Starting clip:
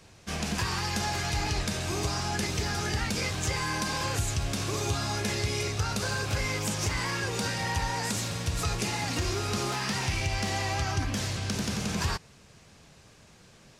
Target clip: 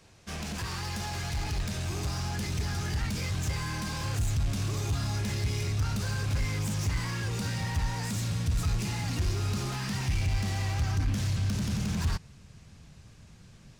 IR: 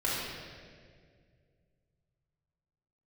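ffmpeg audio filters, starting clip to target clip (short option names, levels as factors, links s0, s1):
-af "asoftclip=type=hard:threshold=0.0335,asubboost=boost=3.5:cutoff=220,volume=0.668"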